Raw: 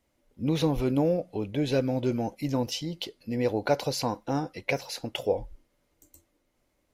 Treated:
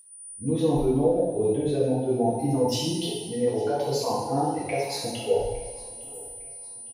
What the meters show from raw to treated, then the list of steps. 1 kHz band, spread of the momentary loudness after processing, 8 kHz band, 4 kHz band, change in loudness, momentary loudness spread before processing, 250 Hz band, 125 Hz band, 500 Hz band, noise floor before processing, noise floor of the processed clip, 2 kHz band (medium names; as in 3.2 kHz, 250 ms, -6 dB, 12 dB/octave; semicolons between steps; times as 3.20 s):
+5.0 dB, 14 LU, +8.5 dB, +2.0 dB, +3.5 dB, 7 LU, +2.0 dB, +1.5 dB, +5.0 dB, -74 dBFS, -42 dBFS, -4.5 dB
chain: expander on every frequency bin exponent 1.5; high-order bell 570 Hz +10 dB; whistle 9.4 kHz -47 dBFS; reverse; compression 4:1, threshold -31 dBFS, peak gain reduction 17.5 dB; reverse; bass shelf 410 Hz +4 dB; peak limiter -24 dBFS, peak gain reduction 6.5 dB; feedback delay 857 ms, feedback 42%, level -21.5 dB; two-slope reverb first 1 s, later 3.1 s, from -18 dB, DRR -8.5 dB